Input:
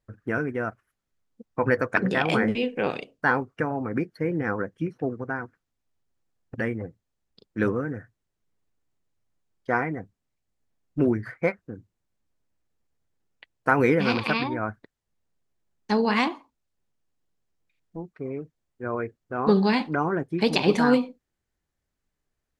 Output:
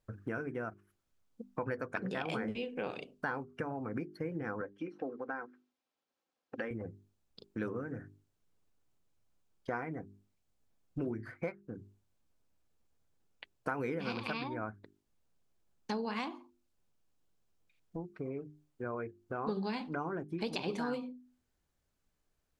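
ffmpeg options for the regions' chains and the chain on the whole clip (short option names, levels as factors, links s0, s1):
-filter_complex "[0:a]asettb=1/sr,asplit=3[s0][s1][s2];[s0]atrim=end=4.614[s3];[s1]atrim=start=4.61:end=6.71,asetpts=PTS-STARTPTS,afade=t=in:d=0.004:c=qsin,afade=t=out:st=2.096:d=0.004:c=qsin,highpass=340,lowpass=5000,aecho=1:1:3.8:0.37,atrim=end_sample=92610[s4];[s2]atrim=start=6.706[s5];[s3][s4]acrossfade=d=0.004:c1=hsin:c2=qsin[s6];[s6][s5]acrossfade=d=0.004:c1=qsin:c2=hsin,equalizer=f=1900:w=5:g=-5,bandreject=f=50:t=h:w=6,bandreject=f=100:t=h:w=6,bandreject=f=150:t=h:w=6,bandreject=f=200:t=h:w=6,bandreject=f=250:t=h:w=6,bandreject=f=300:t=h:w=6,bandreject=f=350:t=h:w=6,bandreject=f=400:t=h:w=6,acompressor=threshold=0.01:ratio=3,volume=1.12"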